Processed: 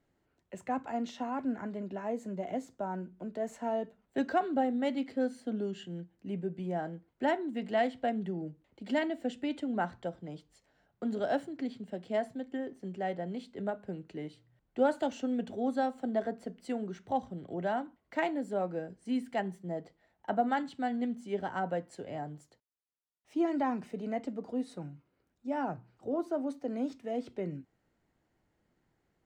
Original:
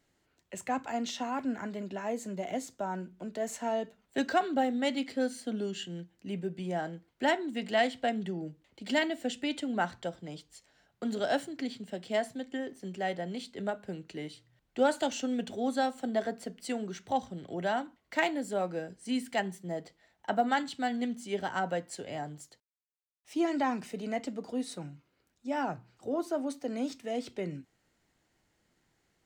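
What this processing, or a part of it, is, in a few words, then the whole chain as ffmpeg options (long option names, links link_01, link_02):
through cloth: -af "highshelf=frequency=2200:gain=-14"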